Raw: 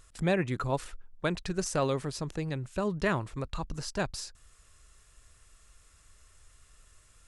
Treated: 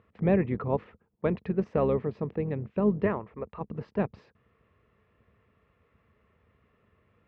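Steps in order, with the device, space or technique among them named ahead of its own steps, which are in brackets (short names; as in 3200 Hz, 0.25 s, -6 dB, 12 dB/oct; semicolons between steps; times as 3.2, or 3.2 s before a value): 3.06–3.61 graphic EQ 125/250/4000 Hz -10/-7/-7 dB; sub-octave bass pedal (octaver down 2 oct, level -3 dB; speaker cabinet 79–2200 Hz, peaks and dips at 210 Hz +9 dB, 450 Hz +9 dB, 1500 Hz -9 dB)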